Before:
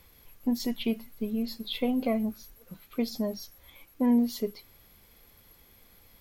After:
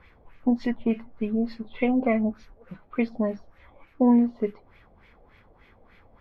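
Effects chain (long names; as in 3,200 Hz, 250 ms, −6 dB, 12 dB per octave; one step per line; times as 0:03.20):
auto-filter low-pass sine 3.4 Hz 650–2,400 Hz
level +4 dB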